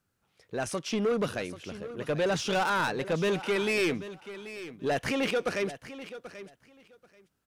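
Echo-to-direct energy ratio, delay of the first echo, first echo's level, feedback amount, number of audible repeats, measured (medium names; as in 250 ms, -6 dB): -14.0 dB, 785 ms, -14.0 dB, 17%, 2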